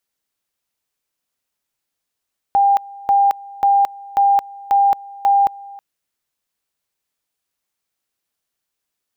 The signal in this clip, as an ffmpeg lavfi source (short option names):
-f lavfi -i "aevalsrc='pow(10,(-10-22.5*gte(mod(t,0.54),0.22))/20)*sin(2*PI*799*t)':d=3.24:s=44100"